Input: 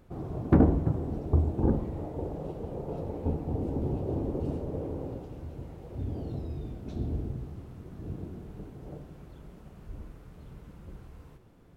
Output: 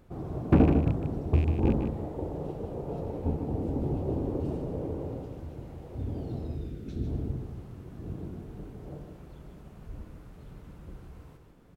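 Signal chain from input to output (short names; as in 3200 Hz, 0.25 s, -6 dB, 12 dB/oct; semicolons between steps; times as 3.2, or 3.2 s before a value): rattling part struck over -22 dBFS, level -32 dBFS; 6.55–7.07 band shelf 820 Hz -10 dB 1.1 oct; echo 0.152 s -7 dB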